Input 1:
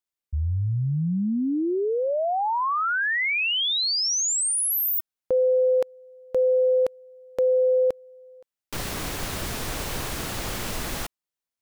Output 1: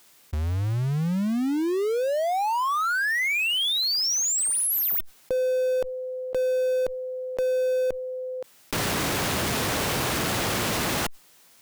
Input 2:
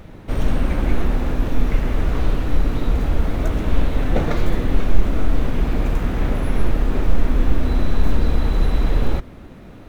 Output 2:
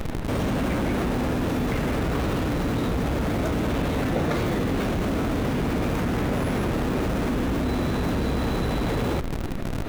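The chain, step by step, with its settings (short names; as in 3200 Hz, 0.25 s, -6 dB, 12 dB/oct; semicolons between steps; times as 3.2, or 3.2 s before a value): HPF 100 Hz 12 dB/oct; in parallel at -7 dB: Schmitt trigger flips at -35.5 dBFS; on the sum: fast leveller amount 70%; gain -5.5 dB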